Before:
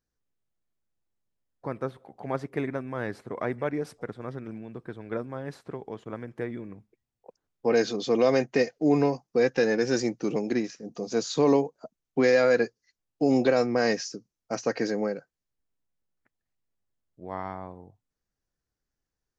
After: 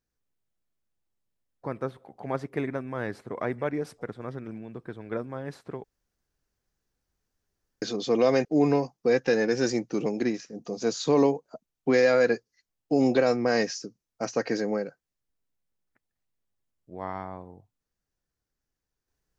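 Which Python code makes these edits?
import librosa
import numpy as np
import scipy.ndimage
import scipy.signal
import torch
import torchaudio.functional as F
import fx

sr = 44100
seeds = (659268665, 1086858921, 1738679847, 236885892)

y = fx.edit(x, sr, fx.room_tone_fill(start_s=5.84, length_s=1.98),
    fx.cut(start_s=8.45, length_s=0.3), tone=tone)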